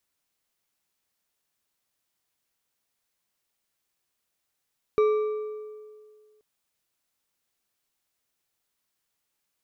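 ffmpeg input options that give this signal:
-f lavfi -i "aevalsrc='0.15*pow(10,-3*t/1.96)*sin(2*PI*427*t)+0.0422*pow(10,-3*t/1.446)*sin(2*PI*1177.2*t)+0.0119*pow(10,-3*t/1.182)*sin(2*PI*2307.5*t)+0.00335*pow(10,-3*t/1.016)*sin(2*PI*3814.4*t)+0.000944*pow(10,-3*t/0.901)*sin(2*PI*5696.2*t)':d=1.43:s=44100"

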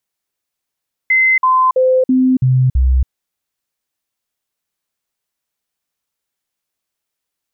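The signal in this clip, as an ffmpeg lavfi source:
-f lavfi -i "aevalsrc='0.376*clip(min(mod(t,0.33),0.28-mod(t,0.33))/0.005,0,1)*sin(2*PI*2060*pow(2,-floor(t/0.33)/1)*mod(t,0.33))':d=1.98:s=44100"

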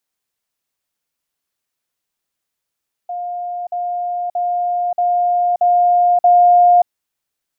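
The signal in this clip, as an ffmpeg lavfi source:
-f lavfi -i "aevalsrc='pow(10,(-21.5+3*floor(t/0.63))/20)*sin(2*PI*708*t)*clip(min(mod(t,0.63),0.58-mod(t,0.63))/0.005,0,1)':d=3.78:s=44100"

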